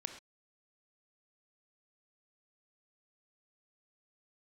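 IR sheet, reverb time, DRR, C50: non-exponential decay, 6.5 dB, 8.0 dB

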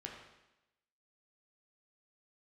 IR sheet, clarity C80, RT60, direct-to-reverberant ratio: 5.5 dB, 0.95 s, −1.0 dB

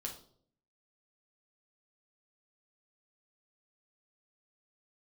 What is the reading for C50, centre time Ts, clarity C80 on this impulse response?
9.0 dB, 19 ms, 13.5 dB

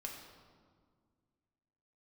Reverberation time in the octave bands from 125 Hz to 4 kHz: 2.4, 2.5, 2.0, 1.8, 1.3, 1.1 seconds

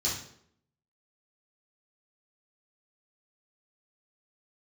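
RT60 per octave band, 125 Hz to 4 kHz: 0.70, 0.80, 0.75, 0.65, 0.55, 0.50 seconds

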